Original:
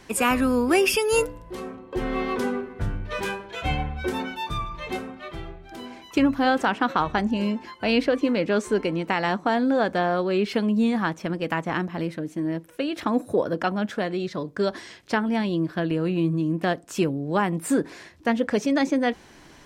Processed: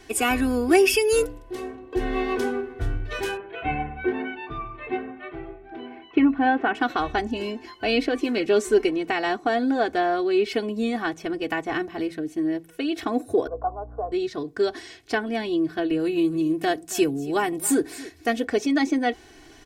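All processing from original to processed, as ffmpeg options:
ffmpeg -i in.wav -filter_complex "[0:a]asettb=1/sr,asplit=3[link_01][link_02][link_03];[link_01]atrim=end=3.374[link_04];[link_02]atrim=start=3.37:end=6.75,asetpts=PTS-STARTPTS,afade=type=in:duration=0.004:curve=qsin,afade=type=out:start_time=3.376:duration=0.004:curve=qsin,lowpass=frequency=2600:width=0.5412,lowpass=frequency=2600:width=1.3066,lowshelf=frequency=110:width_type=q:width=1.5:gain=-8.5[link_05];[link_03]atrim=start=6.746[link_06];[link_04][link_05]acrossfade=duration=0.004:curve1=hsin:curve2=qsin[link_07];[link_07][link_06]acrossfade=duration=0.004:curve1=qsin:curve2=hsin,asettb=1/sr,asplit=3[link_08][link_09][link_10];[link_08]atrim=end=8.154[link_11];[link_09]atrim=start=8.15:end=8.89,asetpts=PTS-STARTPTS,afade=type=in:duration=0.004:curve=qsin,afade=type=out:start_time=0.736:duration=0.004:curve=qsin,highshelf=frequency=6500:gain=6,aecho=1:1:5.2:0.51,atrim=end_sample=32634[link_12];[link_10]atrim=start=8.886[link_13];[link_11][link_12]acrossfade=duration=0.004:curve1=hsin:curve2=qsin[link_14];[link_14][link_13]acrossfade=duration=0.004:curve1=qsin:curve2=hsin,asettb=1/sr,asplit=3[link_15][link_16][link_17];[link_15]atrim=end=13.474[link_18];[link_16]atrim=start=13.47:end=14.12,asetpts=PTS-STARTPTS,afade=type=in:duration=0.004:curve=qsin,afade=type=out:start_time=0.646:duration=0.004:curve=qsin,asuperpass=centerf=720:order=12:qfactor=0.96,aeval=exprs='val(0)+0.00891*(sin(2*PI*60*n/s)+sin(2*PI*2*60*n/s)/2+sin(2*PI*3*60*n/s)/3+sin(2*PI*4*60*n/s)/4+sin(2*PI*5*60*n/s)/5)':channel_layout=same[link_19];[link_17]atrim=start=14.116[link_20];[link_18][link_19]acrossfade=duration=0.004:curve1=hsin:curve2=qsin[link_21];[link_21][link_20]acrossfade=duration=0.004:curve1=qsin:curve2=hsin,asettb=1/sr,asplit=3[link_22][link_23][link_24];[link_22]atrim=end=15.994[link_25];[link_23]atrim=start=15.99:end=18.45,asetpts=PTS-STARTPTS,afade=type=in:duration=0.004:curve=qsin,afade=type=out:start_time=2.456:duration=0.004:curve=qsin,highshelf=frequency=6200:gain=11.5,aecho=1:1:275:0.119,atrim=end_sample=108486[link_26];[link_24]atrim=start=18.446[link_27];[link_25][link_26]acrossfade=duration=0.004:curve1=hsin:curve2=qsin[link_28];[link_28][link_27]acrossfade=duration=0.004:curve1=qsin:curve2=hsin,equalizer=frequency=1100:width_type=o:width=0.54:gain=-5.5,aecho=1:1:2.7:0.85,bandreject=frequency=55.44:width_type=h:width=4,bandreject=frequency=110.88:width_type=h:width=4,bandreject=frequency=166.32:width_type=h:width=4,volume=-1.5dB" out.wav

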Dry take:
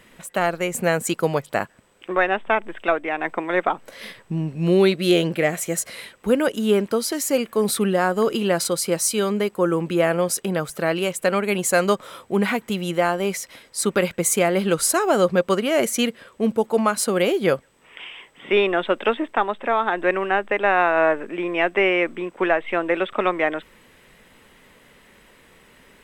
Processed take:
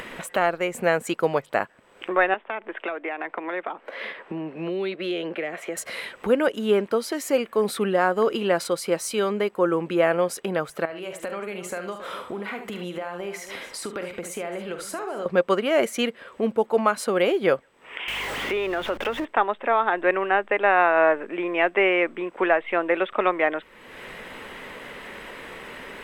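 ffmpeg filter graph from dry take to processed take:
ffmpeg -i in.wav -filter_complex "[0:a]asettb=1/sr,asplit=3[link_01][link_02][link_03];[link_01]atrim=end=2.344[link_04];[link_02]atrim=start=2.34:end=5.77,asetpts=PTS-STARTPTS,afade=type=in:duration=0.004:curve=qsin,afade=type=out:start_time=3.426:duration=0.004:curve=qsin,acrossover=split=240 3400:gain=0.0891 1 0.141[link_05][link_06][link_07];[link_05][link_06][link_07]amix=inputs=3:normalize=0,acrossover=split=240|3000[link_08][link_09][link_10];[link_09]acompressor=threshold=-28dB:ratio=6:attack=3.2:release=140:knee=2.83:detection=peak[link_11];[link_08][link_11][link_10]amix=inputs=3:normalize=0[link_12];[link_03]atrim=start=5.766[link_13];[link_04][link_12]acrossfade=duration=0.004:curve1=hsin:curve2=qsin[link_14];[link_14][link_13]acrossfade=duration=0.004:curve1=qsin:curve2=hsin,asettb=1/sr,asplit=3[link_15][link_16][link_17];[link_15]atrim=end=10.854[link_18];[link_16]atrim=start=10.85:end=15.26,asetpts=PTS-STARTPTS,afade=type=in:duration=0.004:curve=qsin,afade=type=out:start_time=4.406:duration=0.004:curve=qsin,acompressor=threshold=-36dB:ratio=3:attack=3.2:release=140:knee=1:detection=peak,aecho=1:1:45|73|274:0.316|0.335|0.15,atrim=end_sample=194481[link_19];[link_17]atrim=start=15.256[link_20];[link_18][link_19]acrossfade=duration=0.004:curve1=hsin:curve2=qsin[link_21];[link_21][link_20]acrossfade=duration=0.004:curve1=qsin:curve2=hsin,asettb=1/sr,asplit=3[link_22][link_23][link_24];[link_22]atrim=end=18.084[link_25];[link_23]atrim=start=18.08:end=19.25,asetpts=PTS-STARTPTS,afade=type=in:duration=0.004:curve=qsin,afade=type=out:start_time=1.166:duration=0.004:curve=qsin,aeval=exprs='val(0)+0.5*0.0501*sgn(val(0))':channel_layout=same,acompressor=threshold=-23dB:ratio=3:attack=3.2:release=140:knee=1:detection=peak,aeval=exprs='val(0)+0.01*(sin(2*PI*50*n/s)+sin(2*PI*2*50*n/s)/2+sin(2*PI*3*50*n/s)/3+sin(2*PI*4*50*n/s)/4+sin(2*PI*5*50*n/s)/5)':channel_layout=same[link_26];[link_24]atrim=start=19.246[link_27];[link_25][link_26]acrossfade=duration=0.004:curve1=hsin:curve2=qsin[link_28];[link_28][link_27]acrossfade=duration=0.004:curve1=qsin:curve2=hsin,bass=frequency=250:gain=-9,treble=frequency=4000:gain=-11,acompressor=mode=upward:threshold=-25dB:ratio=2.5" out.wav

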